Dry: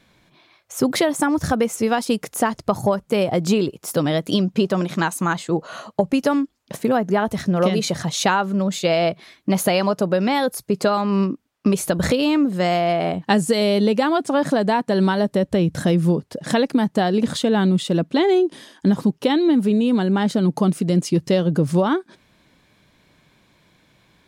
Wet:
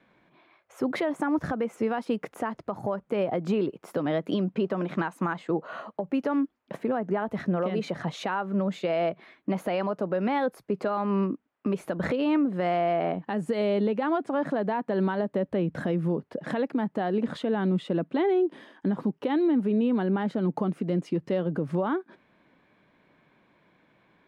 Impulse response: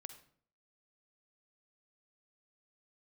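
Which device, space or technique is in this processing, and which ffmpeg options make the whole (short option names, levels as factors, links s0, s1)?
DJ mixer with the lows and highs turned down: -filter_complex "[0:a]acrossover=split=170 2600:gain=0.224 1 0.0794[s0][s1][s2];[s0][s1][s2]amix=inputs=3:normalize=0,alimiter=limit=0.168:level=0:latency=1:release=164,volume=0.75"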